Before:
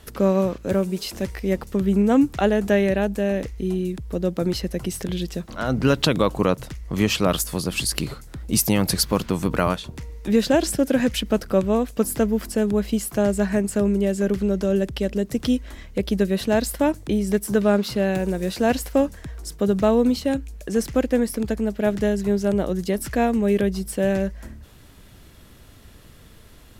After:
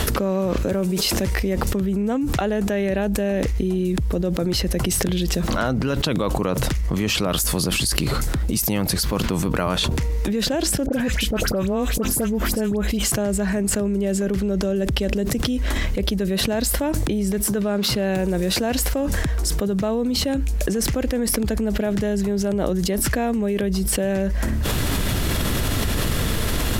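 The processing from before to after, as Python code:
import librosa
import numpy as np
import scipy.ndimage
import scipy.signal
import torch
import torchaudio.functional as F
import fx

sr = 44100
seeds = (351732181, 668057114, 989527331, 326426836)

y = fx.dispersion(x, sr, late='highs', ms=67.0, hz=1800.0, at=(10.86, 13.12))
y = fx.env_flatten(y, sr, amount_pct=100)
y = y * 10.0 ** (-8.5 / 20.0)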